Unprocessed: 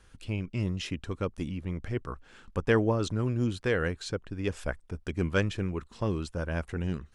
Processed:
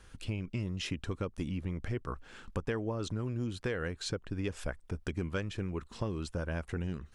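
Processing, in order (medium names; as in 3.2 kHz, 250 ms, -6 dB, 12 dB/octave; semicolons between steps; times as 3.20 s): compression 6:1, threshold -34 dBFS, peak gain reduction 14.5 dB; trim +2.5 dB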